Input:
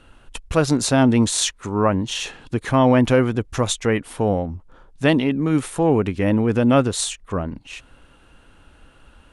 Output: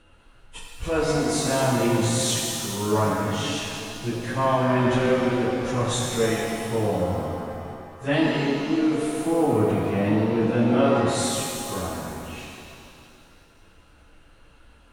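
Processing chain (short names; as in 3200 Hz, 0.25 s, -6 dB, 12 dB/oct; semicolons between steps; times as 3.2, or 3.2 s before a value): plain phase-vocoder stretch 1.6×; shimmer reverb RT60 2.4 s, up +7 st, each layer -8 dB, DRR -3.5 dB; gain -6 dB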